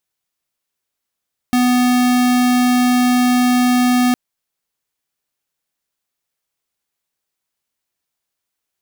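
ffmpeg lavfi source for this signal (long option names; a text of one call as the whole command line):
ffmpeg -f lavfi -i "aevalsrc='0.211*(2*lt(mod(248*t,1),0.5)-1)':duration=2.61:sample_rate=44100" out.wav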